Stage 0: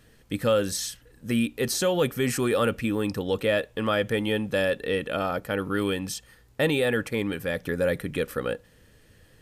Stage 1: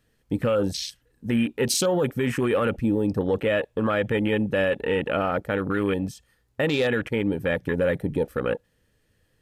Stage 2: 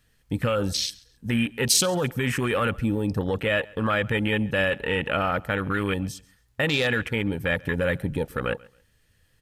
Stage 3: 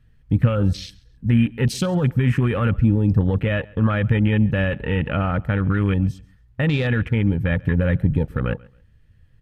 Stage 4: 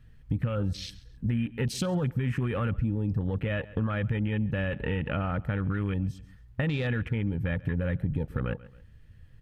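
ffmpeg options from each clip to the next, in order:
-filter_complex "[0:a]afwtdn=0.0224,acrossover=split=4100[s0][s1];[s0]alimiter=limit=0.0944:level=0:latency=1:release=56[s2];[s2][s1]amix=inputs=2:normalize=0,volume=1.88"
-af "equalizer=f=380:w=0.54:g=-9.5,aecho=1:1:136|272:0.0631|0.0164,volume=1.78"
-af "bass=f=250:g=14,treble=f=4000:g=-13,volume=0.841"
-filter_complex "[0:a]asplit=2[s0][s1];[s1]alimiter=limit=0.211:level=0:latency=1,volume=0.794[s2];[s0][s2]amix=inputs=2:normalize=0,acompressor=threshold=0.0562:ratio=3,volume=0.668"

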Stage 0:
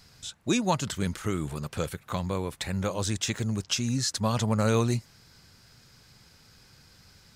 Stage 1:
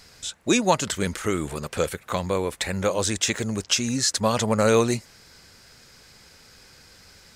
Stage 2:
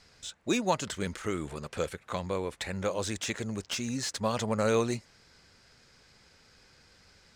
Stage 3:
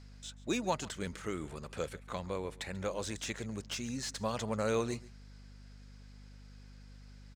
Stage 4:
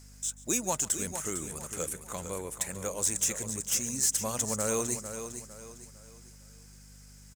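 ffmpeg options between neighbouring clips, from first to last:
-af "equalizer=f=125:t=o:w=1:g=-7,equalizer=f=500:t=o:w=1:g=5,equalizer=f=2000:t=o:w=1:g=4,equalizer=f=8000:t=o:w=1:g=4,volume=1.58"
-filter_complex "[0:a]acrossover=split=2500[s0][s1];[s1]aeval=exprs='0.106*(abs(mod(val(0)/0.106+3,4)-2)-1)':c=same[s2];[s0][s2]amix=inputs=2:normalize=0,adynamicsmooth=sensitivity=6:basefreq=7700,volume=0.422"
-af "aecho=1:1:138:0.0944,aeval=exprs='val(0)+0.00501*(sin(2*PI*50*n/s)+sin(2*PI*2*50*n/s)/2+sin(2*PI*3*50*n/s)/3+sin(2*PI*4*50*n/s)/4+sin(2*PI*5*50*n/s)/5)':c=same,volume=0.531"
-filter_complex "[0:a]aexciter=amount=12.7:drive=2.6:freq=6100,asplit=2[s0][s1];[s1]aecho=0:1:454|908|1362|1816:0.335|0.121|0.0434|0.0156[s2];[s0][s2]amix=inputs=2:normalize=0"

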